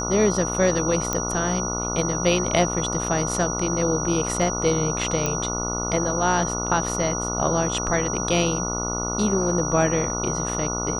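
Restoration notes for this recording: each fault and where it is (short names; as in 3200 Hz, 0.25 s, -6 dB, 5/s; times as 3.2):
buzz 60 Hz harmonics 24 -29 dBFS
tone 5800 Hz -28 dBFS
1.13 pop -9 dBFS
5.26 pop -9 dBFS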